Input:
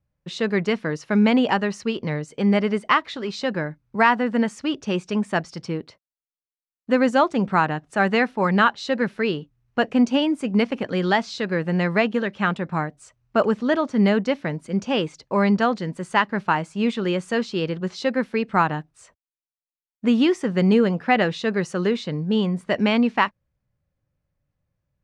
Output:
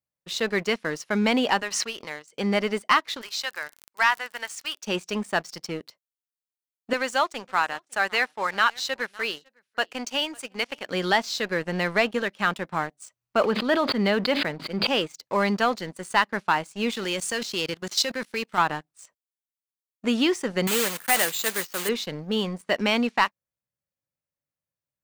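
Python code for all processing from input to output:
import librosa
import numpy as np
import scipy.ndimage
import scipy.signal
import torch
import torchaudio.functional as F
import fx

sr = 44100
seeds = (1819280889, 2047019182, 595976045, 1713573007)

y = fx.chain(x, sr, fx.highpass(hz=1000.0, slope=6),
    fx.high_shelf(hz=6100.0, db=-10.5),
    fx.pre_swell(db_per_s=37.0), at=(1.62, 2.33))
y = fx.highpass(y, sr, hz=1100.0, slope=12, at=(3.21, 4.83), fade=0.02)
y = fx.dmg_crackle(y, sr, seeds[0], per_s=61.0, level_db=-37.0, at=(3.21, 4.83), fade=0.02)
y = fx.chain(y, sr, fx.highpass(hz=960.0, slope=6),
    fx.echo_single(ms=554, db=-21.5), at=(6.93, 10.87))
y = fx.chain(y, sr, fx.brickwall_lowpass(high_hz=5000.0),
    fx.sustainer(db_per_s=50.0), at=(13.41, 14.87))
y = fx.chain(y, sr, fx.high_shelf(hz=2600.0, db=10.0),
    fx.level_steps(step_db=14),
    fx.leveller(passes=1), at=(16.94, 18.58))
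y = fx.chain(y, sr, fx.block_float(bits=3),
    fx.low_shelf(hz=480.0, db=-10.0),
    fx.resample_bad(factor=4, down='filtered', up='hold'), at=(20.67, 21.89))
y = fx.highpass(y, sr, hz=400.0, slope=6)
y = fx.high_shelf(y, sr, hz=5000.0, db=12.0)
y = fx.leveller(y, sr, passes=2)
y = y * 10.0 ** (-8.0 / 20.0)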